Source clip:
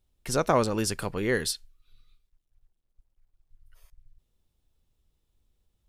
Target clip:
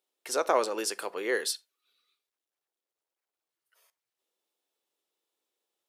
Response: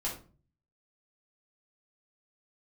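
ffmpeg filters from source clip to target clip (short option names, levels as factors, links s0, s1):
-filter_complex "[0:a]highpass=f=370:w=0.5412,highpass=f=370:w=1.3066,asplit=2[s0][s1];[1:a]atrim=start_sample=2205,atrim=end_sample=4410[s2];[s1][s2]afir=irnorm=-1:irlink=0,volume=0.126[s3];[s0][s3]amix=inputs=2:normalize=0,volume=0.794"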